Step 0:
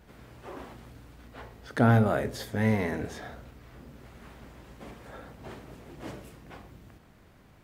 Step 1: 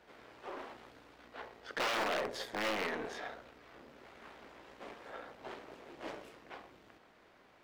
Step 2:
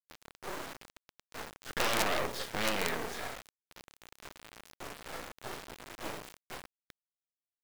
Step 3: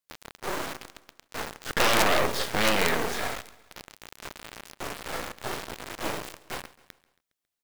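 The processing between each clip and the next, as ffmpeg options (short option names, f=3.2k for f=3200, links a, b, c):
-filter_complex "[0:a]aeval=exprs='(mod(10.6*val(0)+1,2)-1)/10.6':c=same,aeval=exprs='(tanh(50.1*val(0)+0.8)-tanh(0.8))/50.1':c=same,acrossover=split=310 5700:gain=0.1 1 0.224[a][b][c];[a][b][c]amix=inputs=3:normalize=0,volume=4dB"
-af "acrusher=bits=5:dc=4:mix=0:aa=0.000001,volume=7dB"
-filter_complex "[0:a]asplit=2[a][b];[b]volume=22dB,asoftclip=hard,volume=-22dB,volume=-3.5dB[c];[a][c]amix=inputs=2:normalize=0,aecho=1:1:137|274|411|548:0.1|0.051|0.026|0.0133,volume=4.5dB"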